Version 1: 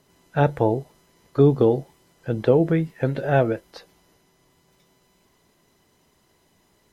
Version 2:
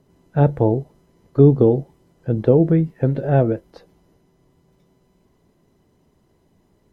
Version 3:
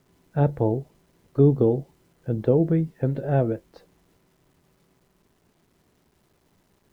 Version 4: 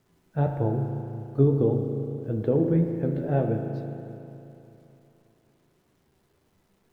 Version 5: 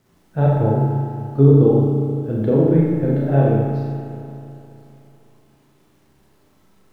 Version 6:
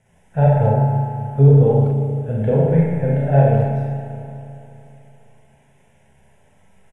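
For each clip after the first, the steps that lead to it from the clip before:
tilt shelving filter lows +8 dB, about 800 Hz; level −1.5 dB
bit-depth reduction 10 bits, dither none; level −5.5 dB
on a send at −4 dB: convolution reverb RT60 3.0 s, pre-delay 36 ms; on the sum: flanger 1.7 Hz, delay 8.4 ms, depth 7.9 ms, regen +53%
four-comb reverb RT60 0.83 s, combs from 29 ms, DRR −2.5 dB; level +4.5 dB
phaser with its sweep stopped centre 1,200 Hz, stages 6; far-end echo of a speakerphone 200 ms, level −14 dB; level +4.5 dB; AAC 32 kbit/s 24,000 Hz

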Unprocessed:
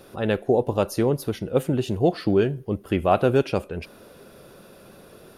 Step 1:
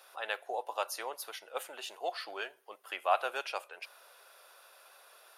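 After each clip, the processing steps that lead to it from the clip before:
high-pass filter 760 Hz 24 dB per octave
level −4 dB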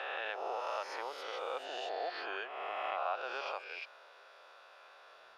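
peak hold with a rise ahead of every peak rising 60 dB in 1.66 s
downward compressor 2.5 to 1, threshold −36 dBFS, peak gain reduction 11 dB
high-frequency loss of the air 170 metres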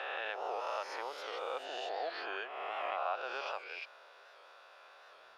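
wow of a warped record 78 rpm, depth 100 cents

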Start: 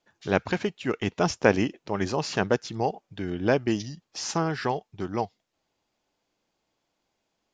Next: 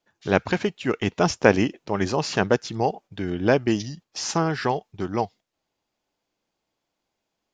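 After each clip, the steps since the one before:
noise gate −47 dBFS, range −6 dB
level +3.5 dB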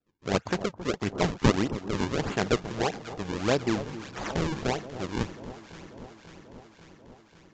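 sample-and-hold swept by an LFO 39×, swing 160% 1.6 Hz
delay that swaps between a low-pass and a high-pass 270 ms, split 1,100 Hz, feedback 82%, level −12.5 dB
level −5.5 dB
Ogg Vorbis 96 kbit/s 16,000 Hz

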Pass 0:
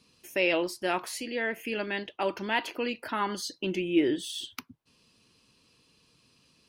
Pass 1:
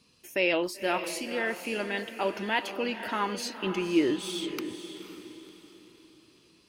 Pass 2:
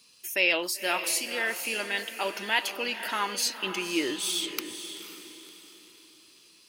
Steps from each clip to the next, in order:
feedback delay with all-pass diffusion 519 ms, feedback 40%, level −9.5 dB
spectral tilt +3.5 dB per octave

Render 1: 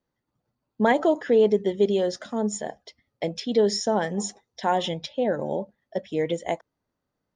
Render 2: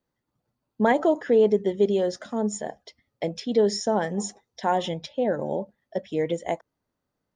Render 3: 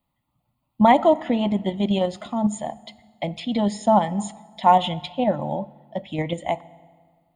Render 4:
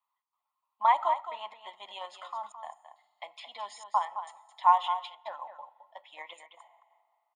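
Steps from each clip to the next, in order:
dynamic equaliser 3,600 Hz, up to −4 dB, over −44 dBFS, Q 0.85
in parallel at −1 dB: output level in coarse steps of 23 dB; on the sum: phaser with its sweep stopped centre 1,600 Hz, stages 6; convolution reverb RT60 1.7 s, pre-delay 4 ms, DRR 18 dB; level +6 dB
four-pole ladder high-pass 960 Hz, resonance 70%; gate pattern "xx.xxxxxxxx." 137 BPM −60 dB; single-tap delay 216 ms −10 dB

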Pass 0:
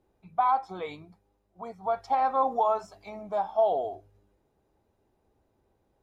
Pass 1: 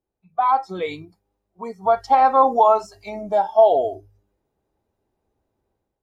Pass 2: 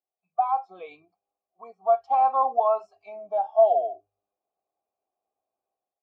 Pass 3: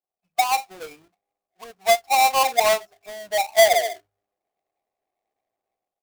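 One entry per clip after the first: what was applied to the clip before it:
noise reduction from a noise print of the clip's start 14 dB; automatic gain control gain up to 11 dB
formant filter a
each half-wave held at its own peak

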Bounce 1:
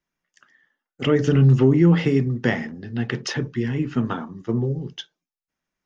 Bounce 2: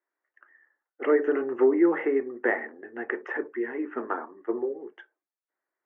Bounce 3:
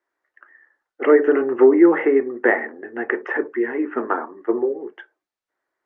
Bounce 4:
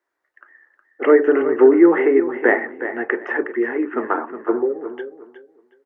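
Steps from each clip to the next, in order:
elliptic band-pass filter 340–1,900 Hz, stop band 40 dB
high-frequency loss of the air 67 metres; level +8.5 dB
repeating echo 365 ms, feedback 22%, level −11 dB; level +1 dB

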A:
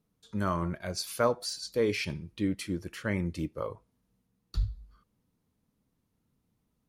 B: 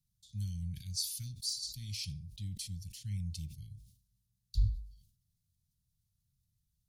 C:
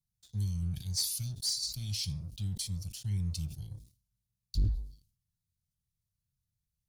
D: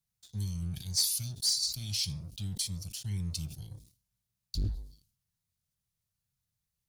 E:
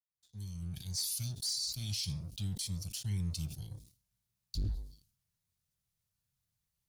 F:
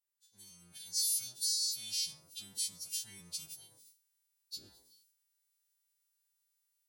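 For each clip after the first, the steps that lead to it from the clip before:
inverse Chebyshev band-stop filter 470–1,100 Hz, stop band 80 dB; level that may fall only so fast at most 98 dB per second
leveller curve on the samples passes 2; phaser whose notches keep moving one way rising 1.8 Hz; level −2 dB
low-shelf EQ 150 Hz −9 dB; level +4 dB
fade in at the beginning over 1.19 s; brickwall limiter −28 dBFS, peak gain reduction 8.5 dB
every partial snapped to a pitch grid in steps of 2 semitones; high-pass filter 380 Hz 12 dB per octave; level −5.5 dB

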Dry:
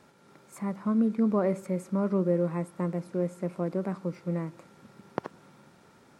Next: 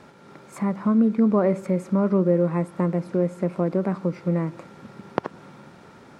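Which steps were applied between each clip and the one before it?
high-shelf EQ 6,700 Hz −12 dB
in parallel at +1.5 dB: downward compressor, threshold −33 dBFS, peak gain reduction 12 dB
on the sum: level +3.5 dB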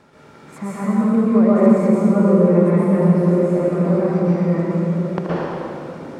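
on a send: echo through a band-pass that steps 353 ms, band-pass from 160 Hz, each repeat 0.7 octaves, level −1.5 dB
on the sum: dense smooth reverb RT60 2.2 s, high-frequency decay 0.95×, pre-delay 105 ms, DRR −9 dB
level −3.5 dB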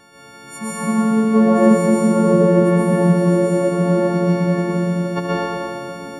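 every partial snapped to a pitch grid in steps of 4 semitones

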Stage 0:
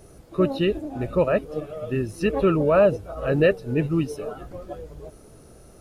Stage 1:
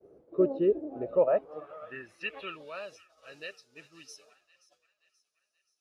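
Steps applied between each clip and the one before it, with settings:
band-pass filter sweep 430 Hz → 5,400 Hz, 0:00.91–0:02.92
downward expander −53 dBFS
delay with a high-pass on its return 529 ms, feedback 50%, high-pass 1,400 Hz, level −18 dB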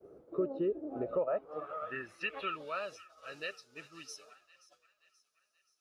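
parametric band 1,300 Hz +7.5 dB 0.35 octaves
downward compressor 3 to 1, threshold −34 dBFS, peak gain reduction 12 dB
level +1.5 dB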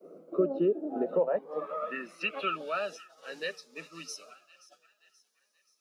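Chebyshev high-pass with heavy ripple 160 Hz, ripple 3 dB
phaser whose notches keep moving one way rising 0.5 Hz
level +9 dB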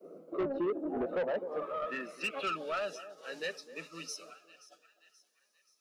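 feedback echo with a band-pass in the loop 255 ms, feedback 40%, band-pass 400 Hz, level −14 dB
soft clipping −28 dBFS, distortion −9 dB

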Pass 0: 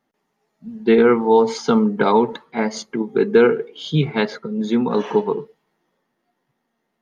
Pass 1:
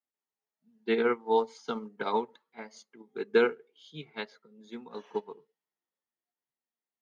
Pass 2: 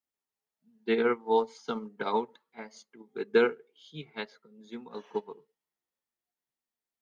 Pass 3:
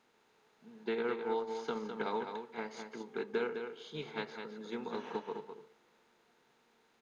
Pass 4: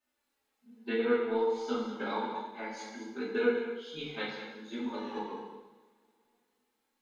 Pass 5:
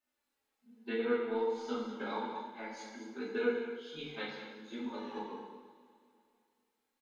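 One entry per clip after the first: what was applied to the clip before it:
Bessel high-pass filter 160 Hz; spectral tilt +2 dB per octave; expander for the loud parts 2.5 to 1, over −25 dBFS; level −6 dB
low-shelf EQ 120 Hz +4.5 dB
compressor on every frequency bin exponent 0.6; downward compressor 2.5 to 1, threshold −31 dBFS, peak gain reduction 9.5 dB; single-tap delay 207 ms −7 dB; level −4.5 dB
spectral dynamics exaggerated over time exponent 1.5; flanger 0.41 Hz, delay 3.3 ms, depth 1 ms, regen +32%; coupled-rooms reverb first 0.84 s, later 3.3 s, from −25 dB, DRR −9 dB; level +2 dB
repeating echo 248 ms, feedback 54%, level −18 dB; level −4 dB

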